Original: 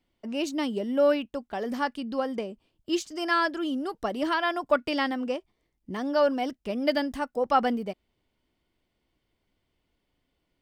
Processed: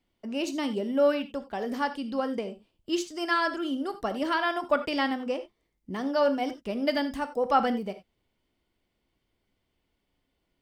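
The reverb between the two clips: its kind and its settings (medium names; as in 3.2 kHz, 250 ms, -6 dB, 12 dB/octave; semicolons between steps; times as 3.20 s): gated-style reverb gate 110 ms flat, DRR 9 dB; trim -1 dB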